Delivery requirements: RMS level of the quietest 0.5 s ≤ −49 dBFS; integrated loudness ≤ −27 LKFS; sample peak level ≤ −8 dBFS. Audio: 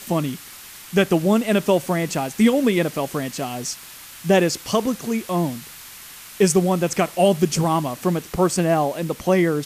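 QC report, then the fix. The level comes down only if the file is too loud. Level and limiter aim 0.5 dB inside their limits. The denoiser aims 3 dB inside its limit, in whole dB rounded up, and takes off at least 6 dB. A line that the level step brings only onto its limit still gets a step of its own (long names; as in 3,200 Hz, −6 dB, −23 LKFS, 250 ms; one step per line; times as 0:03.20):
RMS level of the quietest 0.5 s −41 dBFS: out of spec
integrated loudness −21.0 LKFS: out of spec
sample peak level −6.0 dBFS: out of spec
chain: broadband denoise 6 dB, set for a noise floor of −41 dBFS
level −6.5 dB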